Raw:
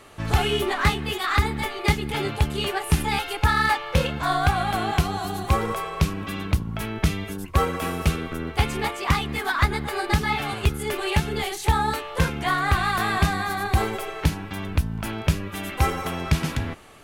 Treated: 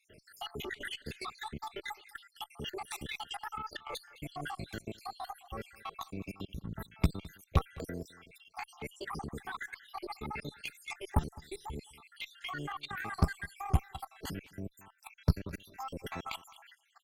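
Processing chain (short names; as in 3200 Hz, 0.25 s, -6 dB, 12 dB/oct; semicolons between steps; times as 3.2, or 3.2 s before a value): random spectral dropouts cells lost 75%; level quantiser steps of 18 dB; tube stage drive 17 dB, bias 0.75; on a send: echo 0.21 s -21.5 dB; on the sum: gain +1 dB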